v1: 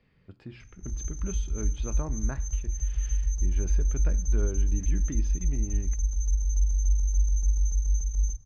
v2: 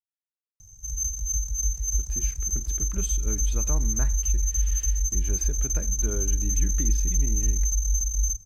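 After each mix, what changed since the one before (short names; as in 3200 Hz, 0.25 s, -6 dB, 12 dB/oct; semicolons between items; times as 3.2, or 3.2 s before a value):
speech: entry +1.70 s; master: remove air absorption 200 m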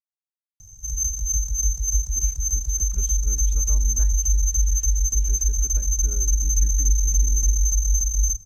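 speech -10.0 dB; background +4.0 dB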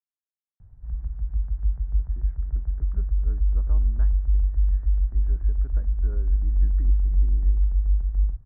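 master: add steep low-pass 1800 Hz 48 dB/oct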